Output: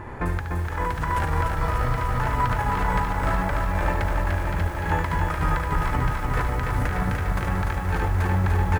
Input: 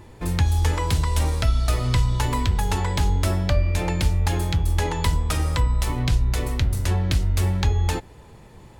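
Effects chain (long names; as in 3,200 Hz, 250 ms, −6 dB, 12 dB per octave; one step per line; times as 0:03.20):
multi-tap delay 71/833 ms −3/−6.5 dB
compressor whose output falls as the input rises −26 dBFS, ratio −1
brickwall limiter −16.5 dBFS, peak gain reduction 7 dB
drawn EQ curve 350 Hz 0 dB, 1,600 Hz +10 dB, 3,800 Hz −12 dB
feedback echo at a low word length 296 ms, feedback 80%, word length 8 bits, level −4 dB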